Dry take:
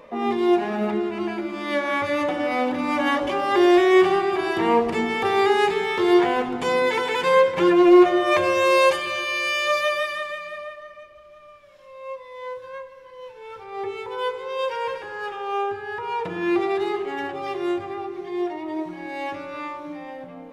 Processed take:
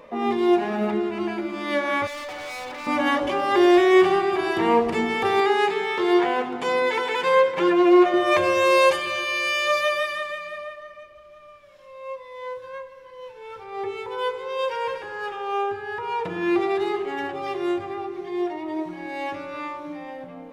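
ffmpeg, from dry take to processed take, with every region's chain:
ffmpeg -i in.wav -filter_complex "[0:a]asettb=1/sr,asplit=3[link_01][link_02][link_03];[link_01]atrim=end=2.074[link_04];[link_02]atrim=start=2.07:end=2.87,asetpts=PTS-STARTPTS,afade=type=in:duration=0.004:curve=qsin,afade=type=out:start_time=0.796:duration=0.004:curve=qsin,highpass=650,lowpass=6600,equalizer=frequency=2200:width=5.8:gain=4.5,asoftclip=type=hard:threshold=-32.5dB[link_05];[link_03]atrim=start=2.866[link_06];[link_04][link_05]acrossfade=duration=0.004:curve1=hsin:curve2=qsin[link_07];[link_07][link_06]acrossfade=duration=0.004:curve1=qsin:curve2=hsin,asettb=1/sr,asplit=3[link_08][link_09][link_10];[link_08]atrim=end=5.404[link_11];[link_09]atrim=start=5.4:end=8.14,asetpts=PTS-STARTPTS,afade=type=in:duration=0.004:curve=qsin,afade=type=out:start_time=2.736:duration=0.004:curve=qsin,highpass=frequency=310:poles=1,highshelf=frequency=5700:gain=-6[link_12];[link_10]atrim=start=8.136[link_13];[link_11][link_12]acrossfade=duration=0.004:curve1=hsin:curve2=qsin[link_14];[link_14][link_13]acrossfade=duration=0.004:curve1=qsin:curve2=hsin" out.wav

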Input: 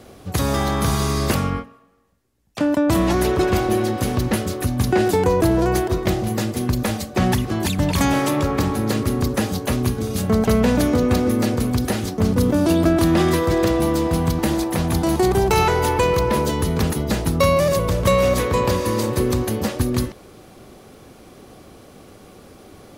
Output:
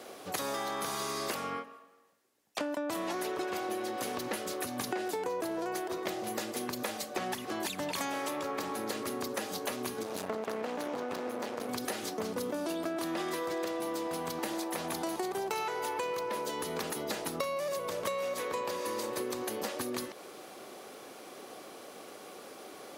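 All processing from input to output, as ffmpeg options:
ffmpeg -i in.wav -filter_complex "[0:a]asettb=1/sr,asplit=3[link_01][link_02][link_03];[link_01]atrim=end=10.034[link_04];[link_02]atrim=start=10.03:end=11.69,asetpts=PTS-STARTPTS,afade=type=in:duration=0.004:curve=qsin,afade=type=out:start_time=1.656:duration=0.004:curve=qsin,highshelf=frequency=4100:gain=-8,aeval=exprs='max(val(0),0)':channel_layout=same[link_05];[link_03]atrim=start=11.686[link_06];[link_04][link_05]acrossfade=duration=0.004:curve1=hsin:curve2=qsin[link_07];[link_07][link_06]acrossfade=duration=0.004:curve1=qsin:curve2=hsin,highpass=420,acompressor=threshold=-33dB:ratio=6" out.wav

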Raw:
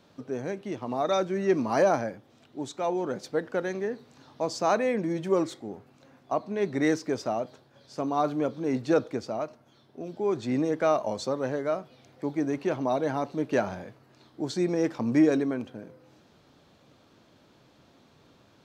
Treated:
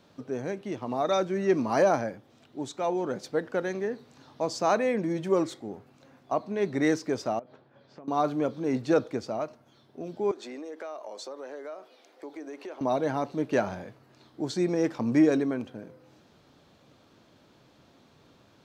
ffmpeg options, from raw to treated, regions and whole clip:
ffmpeg -i in.wav -filter_complex "[0:a]asettb=1/sr,asplit=3[link_01][link_02][link_03];[link_01]atrim=end=7.394[link_04];[link_02]atrim=start=7.39:end=8.08,asetpts=PTS-STARTPTS,afade=type=in:duration=0.004:curve=qsin,afade=type=out:start_time=0.686:duration=0.004:curve=qsin,acompressor=threshold=-42dB:ratio=12:attack=3.2:release=140:knee=1:detection=peak,highpass=110,lowpass=2400[link_05];[link_03]atrim=start=8.076[link_06];[link_04][link_05]acrossfade=duration=0.004:curve1=hsin:curve2=qsin[link_07];[link_07][link_06]acrossfade=duration=0.004:curve1=qsin:curve2=hsin,asettb=1/sr,asplit=3[link_08][link_09][link_10];[link_08]atrim=end=10.314[link_11];[link_09]atrim=start=10.31:end=12.81,asetpts=PTS-STARTPTS,afade=type=in:duration=0.004:curve=qsin,afade=type=out:start_time=2.496:duration=0.004:curve=qsin,highpass=frequency=330:width=0.5412,highpass=frequency=330:width=1.3066,acompressor=threshold=-38dB:ratio=4:attack=3.2:release=140:knee=1:detection=peak[link_12];[link_10]atrim=start=12.806[link_13];[link_11][link_12]acrossfade=duration=0.004:curve1=hsin:curve2=qsin[link_14];[link_14][link_13]acrossfade=duration=0.004:curve1=qsin:curve2=hsin" out.wav

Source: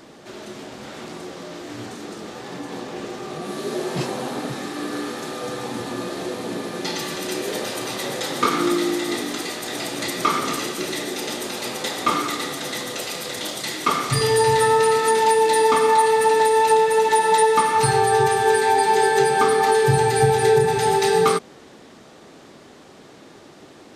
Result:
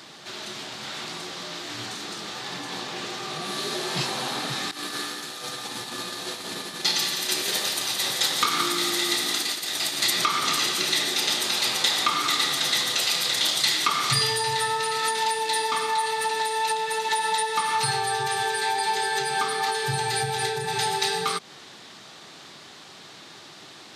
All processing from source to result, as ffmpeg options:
ffmpeg -i in.wav -filter_complex "[0:a]asettb=1/sr,asplit=3[link_01][link_02][link_03];[link_01]atrim=end=4.714[link_04];[link_02]atrim=start=4.71:end=10.12,asetpts=PTS-STARTPTS,afade=type=in:duration=0.004:curve=qsin,afade=type=out:start_time=5.406:duration=0.004:curve=qsin,agate=range=-33dB:threshold=-24dB:ratio=3:release=100:detection=peak,highshelf=frequency=7500:gain=8,aecho=1:1:171:0.422,atrim=end_sample=238581[link_05];[link_03]atrim=start=10.116[link_06];[link_04][link_05]acrossfade=duration=0.004:curve1=hsin:curve2=qsin[link_07];[link_07][link_06]acrossfade=duration=0.004:curve1=qsin:curve2=hsin,highpass=140,acompressor=threshold=-22dB:ratio=6,equalizer=frequency=250:width_type=o:width=1:gain=-9,equalizer=frequency=500:width_type=o:width=1:gain=-9,equalizer=frequency=4000:width_type=o:width=1:gain=7,volume=3dB" out.wav

